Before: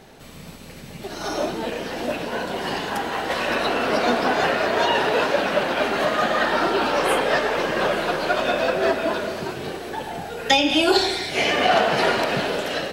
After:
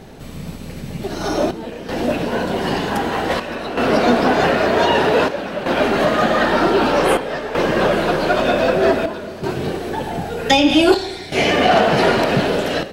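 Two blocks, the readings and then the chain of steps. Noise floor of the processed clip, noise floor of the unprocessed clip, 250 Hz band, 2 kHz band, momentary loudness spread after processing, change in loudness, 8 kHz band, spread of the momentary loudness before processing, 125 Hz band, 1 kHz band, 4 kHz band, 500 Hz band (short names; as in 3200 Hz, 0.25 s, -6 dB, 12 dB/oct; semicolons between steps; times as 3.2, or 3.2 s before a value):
-32 dBFS, -40 dBFS, +8.0 dB, +2.0 dB, 11 LU, +4.0 dB, +1.5 dB, 13 LU, +10.0 dB, +3.5 dB, +1.5 dB, +5.0 dB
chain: low shelf 430 Hz +9.5 dB; in parallel at -5 dB: soft clip -13.5 dBFS, distortion -14 dB; on the sum: chopper 0.53 Hz, depth 65%, duty 80%; gain -1 dB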